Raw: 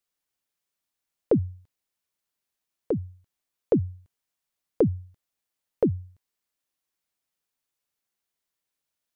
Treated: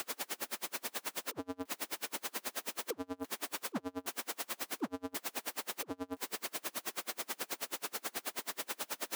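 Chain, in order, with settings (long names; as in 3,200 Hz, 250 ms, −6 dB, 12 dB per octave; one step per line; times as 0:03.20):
sign of each sample alone
high-pass filter 230 Hz 24 dB per octave
high-shelf EQ 2,200 Hz −10 dB
soft clipping −35.5 dBFS, distortion −17 dB
tremolo with a sine in dB 9.3 Hz, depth 36 dB
level +8 dB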